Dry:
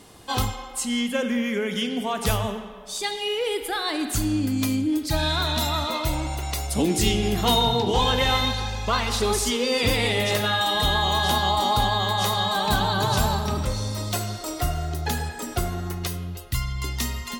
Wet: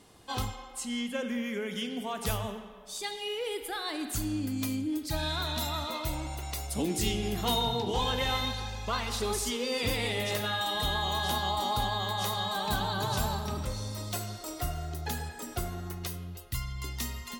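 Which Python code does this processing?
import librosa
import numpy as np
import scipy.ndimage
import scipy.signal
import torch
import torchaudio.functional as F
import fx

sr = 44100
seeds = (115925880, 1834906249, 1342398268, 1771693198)

y = fx.high_shelf(x, sr, hz=12000.0, db=fx.steps((0.0, -4.0), (1.27, 5.5)))
y = F.gain(torch.from_numpy(y), -8.5).numpy()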